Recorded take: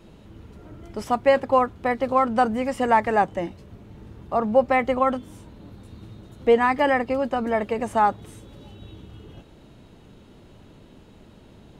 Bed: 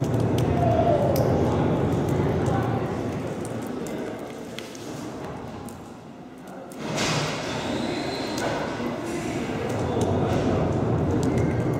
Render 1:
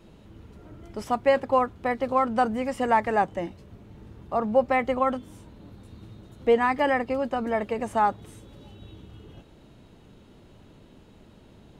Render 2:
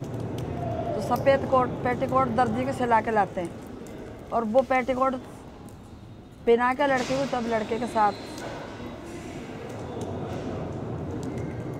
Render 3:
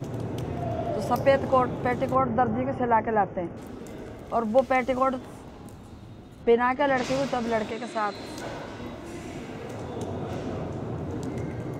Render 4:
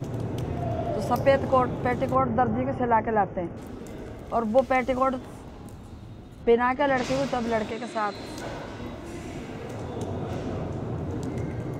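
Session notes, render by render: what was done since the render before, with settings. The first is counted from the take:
gain -3 dB
add bed -9.5 dB
2.15–3.57 running mean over 11 samples; 6.43–7.04 air absorption 92 m; 7.71–8.15 speaker cabinet 200–8500 Hz, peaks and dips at 250 Hz -5 dB, 480 Hz -7 dB, 850 Hz -9 dB
low shelf 83 Hz +6.5 dB

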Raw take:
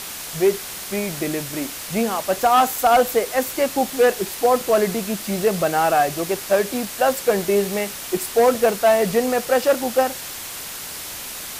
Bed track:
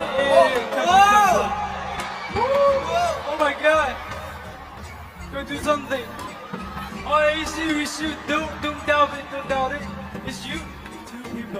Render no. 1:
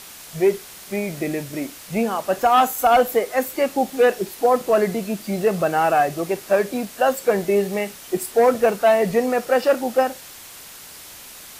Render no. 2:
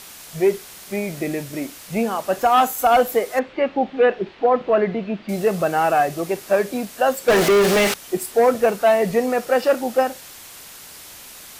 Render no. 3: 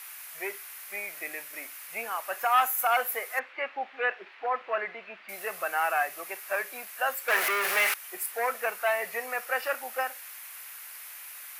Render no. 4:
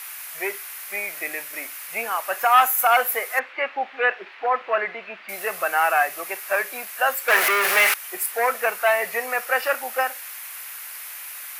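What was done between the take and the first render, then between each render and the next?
noise print and reduce 8 dB
3.39–5.29 LPF 3300 Hz 24 dB/oct; 7.28–7.94 overdrive pedal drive 34 dB, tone 3500 Hz, clips at -8.5 dBFS
HPF 1400 Hz 12 dB/oct; band shelf 5100 Hz -10.5 dB
gain +7.5 dB

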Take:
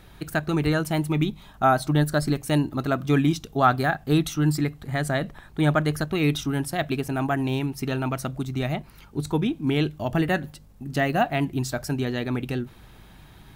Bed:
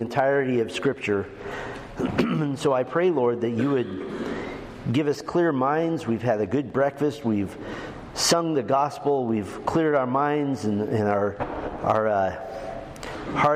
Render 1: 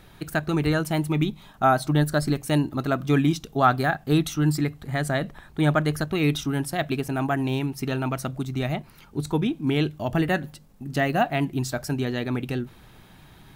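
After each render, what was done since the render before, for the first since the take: de-hum 50 Hz, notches 2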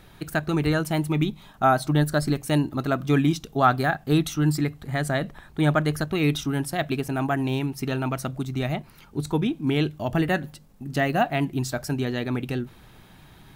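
nothing audible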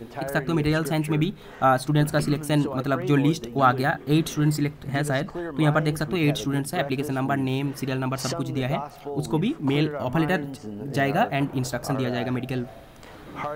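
add bed -11 dB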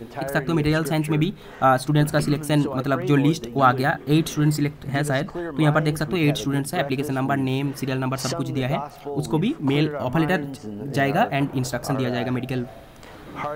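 gain +2 dB

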